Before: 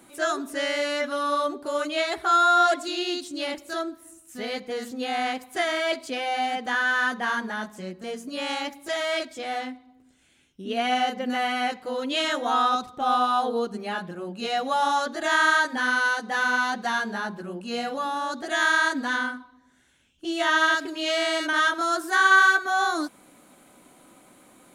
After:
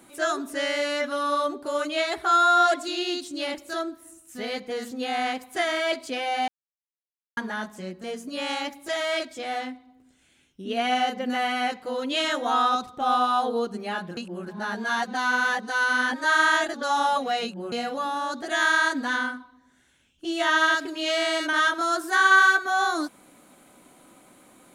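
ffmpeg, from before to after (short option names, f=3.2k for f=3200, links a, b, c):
-filter_complex "[0:a]asplit=5[a][b][c][d][e];[a]atrim=end=6.48,asetpts=PTS-STARTPTS,afade=t=out:st=6.476:d=0.004:c=hsin[f];[b]atrim=start=6.48:end=7.37,asetpts=PTS-STARTPTS,volume=0[g];[c]atrim=start=7.37:end=14.172,asetpts=PTS-STARTPTS,afade=t=in:d=0.004:c=hsin[h];[d]atrim=start=14.168:end=17.722,asetpts=PTS-STARTPTS,areverse[i];[e]atrim=start=17.718[j];[f][g][h]concat=n=3:v=0:a=1[k];[k][i]acrossfade=d=0.004:c1=hsin:c2=hsin[l];[l][j]acrossfade=d=0.004:c1=hsin:c2=hsin"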